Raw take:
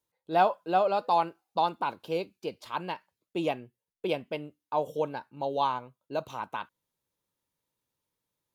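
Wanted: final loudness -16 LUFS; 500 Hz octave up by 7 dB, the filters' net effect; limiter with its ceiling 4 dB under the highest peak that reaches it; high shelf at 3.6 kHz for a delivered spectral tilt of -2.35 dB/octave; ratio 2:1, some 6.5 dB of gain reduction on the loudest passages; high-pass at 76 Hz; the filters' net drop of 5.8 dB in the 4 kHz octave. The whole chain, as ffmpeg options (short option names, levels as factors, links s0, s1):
-af "highpass=76,equalizer=f=500:t=o:g=9,highshelf=f=3600:g=-6,equalizer=f=4000:t=o:g=-4,acompressor=threshold=0.0447:ratio=2,volume=6.68,alimiter=limit=0.708:level=0:latency=1"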